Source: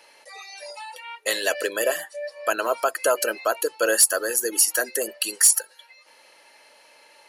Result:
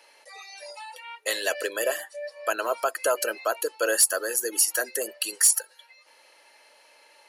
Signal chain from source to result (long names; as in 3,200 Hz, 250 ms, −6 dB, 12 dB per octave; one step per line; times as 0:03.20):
high-pass filter 280 Hz 12 dB per octave
level −3 dB